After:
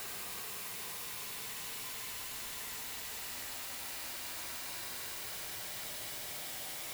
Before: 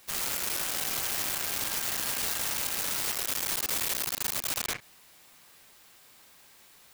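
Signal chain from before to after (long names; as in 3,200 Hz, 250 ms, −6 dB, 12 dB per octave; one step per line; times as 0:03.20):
hum removal 56.95 Hz, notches 28
extreme stretch with random phases 43×, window 0.10 s, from 0:04.99
level +14 dB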